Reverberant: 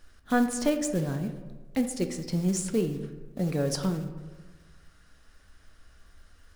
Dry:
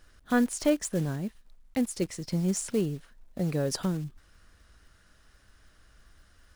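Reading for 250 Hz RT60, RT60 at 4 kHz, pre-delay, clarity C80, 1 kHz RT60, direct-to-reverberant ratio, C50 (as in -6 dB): 1.4 s, 0.65 s, 4 ms, 11.5 dB, 1.2 s, 6.0 dB, 9.5 dB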